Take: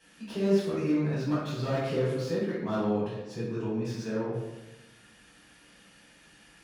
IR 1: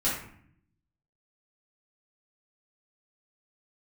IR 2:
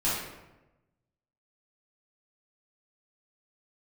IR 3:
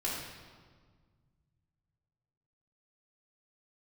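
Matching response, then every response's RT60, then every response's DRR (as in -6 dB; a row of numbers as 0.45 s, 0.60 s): 2; 0.60 s, 1.0 s, 1.6 s; -9.0 dB, -10.0 dB, -7.5 dB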